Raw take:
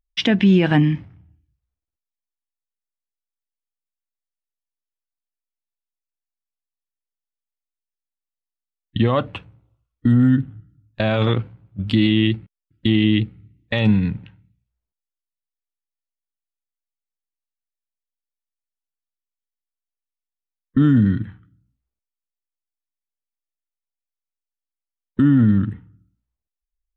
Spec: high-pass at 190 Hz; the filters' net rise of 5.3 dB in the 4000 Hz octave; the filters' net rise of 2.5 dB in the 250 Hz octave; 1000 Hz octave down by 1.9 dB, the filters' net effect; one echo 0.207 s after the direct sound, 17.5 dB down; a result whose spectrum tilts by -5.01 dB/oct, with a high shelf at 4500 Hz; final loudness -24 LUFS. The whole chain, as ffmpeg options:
-af "highpass=190,equalizer=f=250:t=o:g=5,equalizer=f=1k:t=o:g=-3.5,equalizer=f=4k:t=o:g=4.5,highshelf=f=4.5k:g=6.5,aecho=1:1:207:0.133,volume=-7dB"

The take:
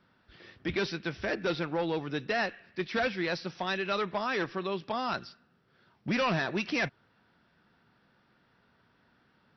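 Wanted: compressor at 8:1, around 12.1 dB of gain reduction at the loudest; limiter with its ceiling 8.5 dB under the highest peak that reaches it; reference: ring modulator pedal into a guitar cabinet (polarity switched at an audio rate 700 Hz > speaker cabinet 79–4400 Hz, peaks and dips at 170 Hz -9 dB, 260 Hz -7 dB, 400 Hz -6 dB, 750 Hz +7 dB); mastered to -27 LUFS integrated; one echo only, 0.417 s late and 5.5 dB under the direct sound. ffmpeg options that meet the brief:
-af "acompressor=threshold=-39dB:ratio=8,alimiter=level_in=12.5dB:limit=-24dB:level=0:latency=1,volume=-12.5dB,aecho=1:1:417:0.531,aeval=exprs='val(0)*sgn(sin(2*PI*700*n/s))':c=same,highpass=79,equalizer=f=170:t=q:w=4:g=-9,equalizer=f=260:t=q:w=4:g=-7,equalizer=f=400:t=q:w=4:g=-6,equalizer=f=750:t=q:w=4:g=7,lowpass=f=4.4k:w=0.5412,lowpass=f=4.4k:w=1.3066,volume=18dB"

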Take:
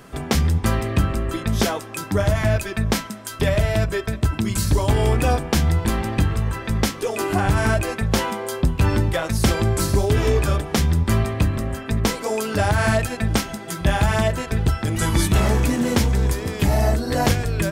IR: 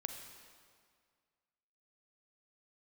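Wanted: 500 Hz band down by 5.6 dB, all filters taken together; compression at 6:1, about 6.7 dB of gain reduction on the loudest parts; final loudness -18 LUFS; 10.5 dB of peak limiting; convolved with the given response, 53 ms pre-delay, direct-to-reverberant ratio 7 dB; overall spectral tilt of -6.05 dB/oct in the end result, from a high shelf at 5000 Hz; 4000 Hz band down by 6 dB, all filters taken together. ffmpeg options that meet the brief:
-filter_complex "[0:a]equalizer=f=500:t=o:g=-7.5,equalizer=f=4k:t=o:g=-4.5,highshelf=f=5k:g=-7,acompressor=threshold=-21dB:ratio=6,alimiter=limit=-21.5dB:level=0:latency=1,asplit=2[a][b];[1:a]atrim=start_sample=2205,adelay=53[c];[b][c]afir=irnorm=-1:irlink=0,volume=-6dB[d];[a][d]amix=inputs=2:normalize=0,volume=12dB"

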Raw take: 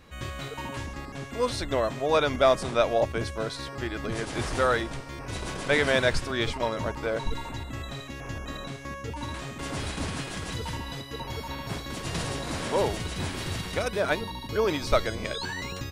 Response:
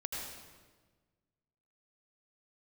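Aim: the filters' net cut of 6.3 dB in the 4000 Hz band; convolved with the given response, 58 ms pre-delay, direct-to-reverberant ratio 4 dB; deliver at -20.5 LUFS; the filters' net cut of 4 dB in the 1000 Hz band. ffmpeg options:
-filter_complex "[0:a]equalizer=f=1k:t=o:g=-5,equalizer=f=4k:t=o:g=-7.5,asplit=2[a][b];[1:a]atrim=start_sample=2205,adelay=58[c];[b][c]afir=irnorm=-1:irlink=0,volume=-5.5dB[d];[a][d]amix=inputs=2:normalize=0,volume=9dB"

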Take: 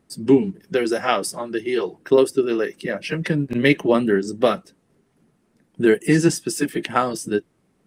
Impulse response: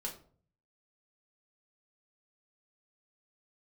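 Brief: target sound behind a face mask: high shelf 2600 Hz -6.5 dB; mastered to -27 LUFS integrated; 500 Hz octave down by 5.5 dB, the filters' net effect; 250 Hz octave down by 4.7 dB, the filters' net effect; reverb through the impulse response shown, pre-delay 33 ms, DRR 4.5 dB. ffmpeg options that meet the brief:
-filter_complex "[0:a]equalizer=f=250:t=o:g=-4,equalizer=f=500:t=o:g=-5.5,asplit=2[a][b];[1:a]atrim=start_sample=2205,adelay=33[c];[b][c]afir=irnorm=-1:irlink=0,volume=-4dB[d];[a][d]amix=inputs=2:normalize=0,highshelf=f=2.6k:g=-6.5,volume=-3dB"

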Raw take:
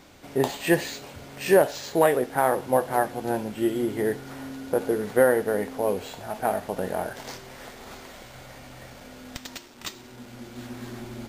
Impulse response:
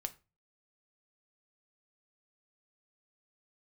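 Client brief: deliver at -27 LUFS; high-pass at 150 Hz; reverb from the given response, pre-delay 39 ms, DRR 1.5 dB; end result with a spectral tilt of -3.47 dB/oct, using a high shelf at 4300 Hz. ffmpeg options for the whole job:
-filter_complex "[0:a]highpass=150,highshelf=f=4.3k:g=8.5,asplit=2[a][b];[1:a]atrim=start_sample=2205,adelay=39[c];[b][c]afir=irnorm=-1:irlink=0,volume=0dB[d];[a][d]amix=inputs=2:normalize=0,volume=-4dB"

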